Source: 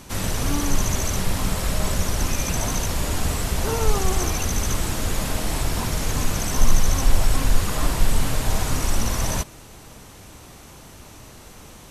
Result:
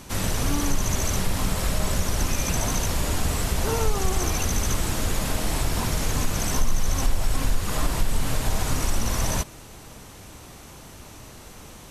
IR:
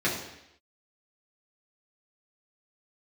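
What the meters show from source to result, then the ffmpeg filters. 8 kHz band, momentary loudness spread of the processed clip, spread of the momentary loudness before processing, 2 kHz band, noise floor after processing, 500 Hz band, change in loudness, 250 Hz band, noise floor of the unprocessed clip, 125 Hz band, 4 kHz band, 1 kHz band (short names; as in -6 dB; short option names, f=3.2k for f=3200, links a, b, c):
-1.5 dB, 18 LU, 21 LU, -1.5 dB, -44 dBFS, -1.5 dB, -1.5 dB, -1.5 dB, -44 dBFS, -2.0 dB, -1.5 dB, -1.5 dB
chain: -af "acompressor=threshold=-18dB:ratio=2.5"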